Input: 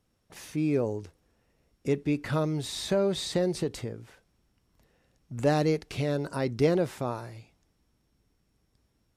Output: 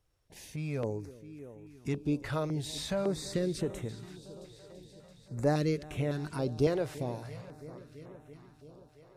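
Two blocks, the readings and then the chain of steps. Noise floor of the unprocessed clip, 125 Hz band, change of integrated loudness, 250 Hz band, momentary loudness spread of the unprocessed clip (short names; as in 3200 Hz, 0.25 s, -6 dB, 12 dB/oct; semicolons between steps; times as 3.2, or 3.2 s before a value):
-73 dBFS, -2.5 dB, -4.5 dB, -4.5 dB, 14 LU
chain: low shelf 73 Hz +7.5 dB; multi-head echo 0.335 s, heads first and second, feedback 65%, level -20 dB; stepped notch 3.6 Hz 220–4700 Hz; gain -3.5 dB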